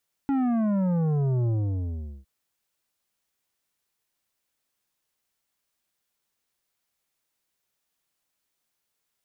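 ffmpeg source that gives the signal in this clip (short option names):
-f lavfi -i "aevalsrc='0.075*clip((1.96-t)/0.78,0,1)*tanh(3.16*sin(2*PI*280*1.96/log(65/280)*(exp(log(65/280)*t/1.96)-1)))/tanh(3.16)':d=1.96:s=44100"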